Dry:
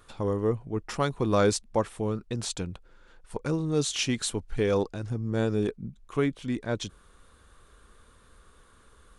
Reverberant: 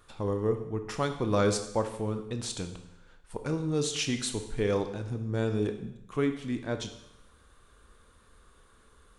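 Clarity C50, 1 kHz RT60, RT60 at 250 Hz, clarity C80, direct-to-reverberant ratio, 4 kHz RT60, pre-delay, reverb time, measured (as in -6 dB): 9.0 dB, 0.85 s, 0.85 s, 12.0 dB, 6.5 dB, 0.85 s, 23 ms, 0.85 s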